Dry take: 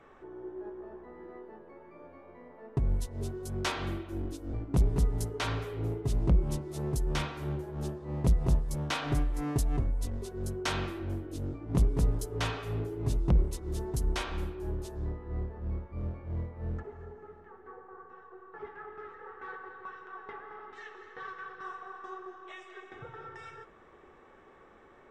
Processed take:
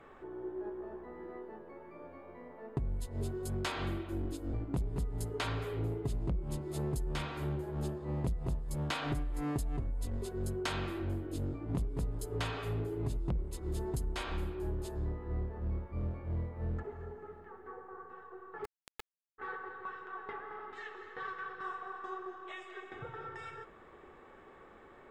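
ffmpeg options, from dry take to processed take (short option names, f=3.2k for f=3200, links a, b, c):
-filter_complex "[0:a]asplit=3[a][b][c];[a]afade=t=out:st=18.64:d=0.02[d];[b]acrusher=bits=3:dc=4:mix=0:aa=0.000001,afade=t=in:st=18.64:d=0.02,afade=t=out:st=19.38:d=0.02[e];[c]afade=t=in:st=19.38:d=0.02[f];[d][e][f]amix=inputs=3:normalize=0,acompressor=threshold=-33dB:ratio=6,bandreject=f=5.8k:w=5.5,volume=1dB"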